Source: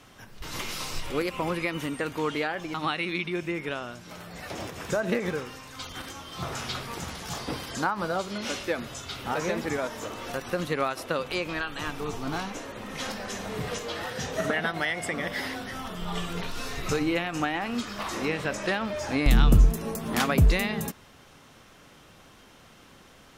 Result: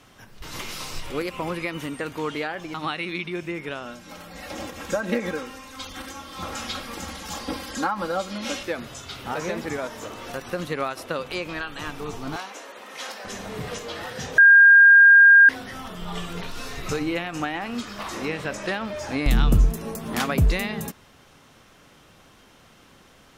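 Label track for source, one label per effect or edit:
3.850000	8.630000	comb filter 3.7 ms, depth 77%
12.360000	13.250000	high-pass filter 490 Hz
14.380000	15.490000	beep over 1,610 Hz −8 dBFS

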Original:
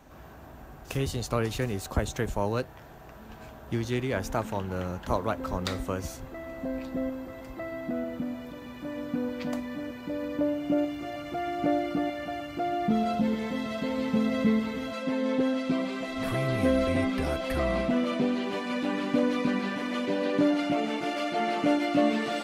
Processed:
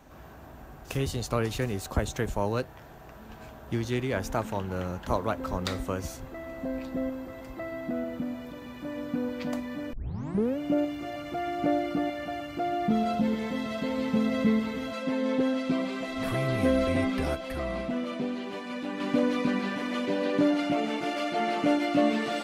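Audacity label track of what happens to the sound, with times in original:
9.930000	9.930000	tape start 0.65 s
17.350000	19.000000	clip gain −5 dB

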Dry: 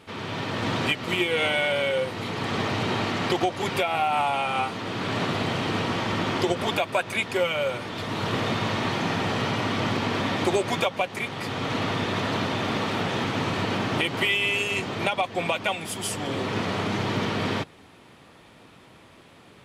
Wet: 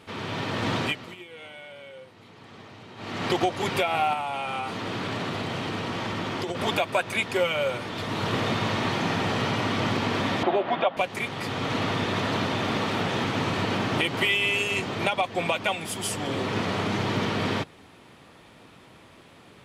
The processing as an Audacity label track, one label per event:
0.760000	3.350000	duck −19.5 dB, fades 0.39 s
4.130000	6.550000	downward compressor, threshold −26 dBFS
10.430000	10.970000	loudspeaker in its box 230–3,100 Hz, peaks and dips at 450 Hz −5 dB, 680 Hz +8 dB, 2,300 Hz −6 dB

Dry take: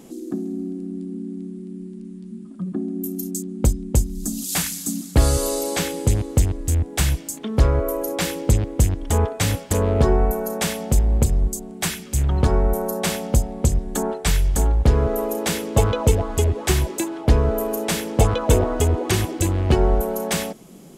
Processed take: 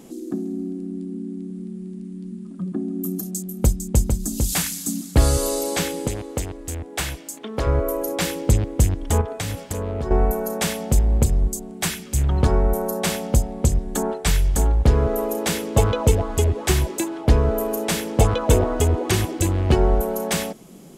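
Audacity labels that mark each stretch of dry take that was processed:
1.050000	4.530000	single-tap delay 453 ms −5 dB
6.070000	7.670000	bass and treble bass −12 dB, treble −4 dB
9.210000	10.110000	downward compressor 5 to 1, threshold −23 dBFS

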